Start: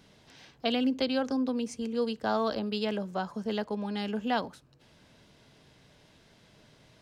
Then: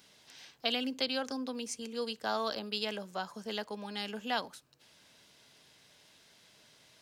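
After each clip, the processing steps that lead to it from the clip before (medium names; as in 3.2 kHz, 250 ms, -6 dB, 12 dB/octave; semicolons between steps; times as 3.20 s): tilt EQ +3 dB/octave; trim -3.5 dB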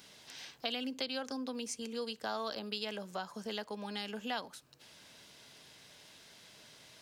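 compression 2:1, threshold -46 dBFS, peak gain reduction 10.5 dB; trim +4.5 dB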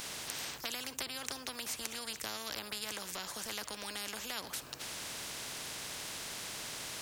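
spectrum-flattening compressor 4:1; trim +4.5 dB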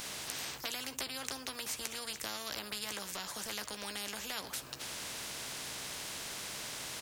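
doubling 15 ms -10.5 dB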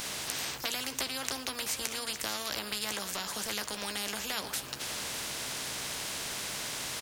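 delay 602 ms -12.5 dB; trim +5 dB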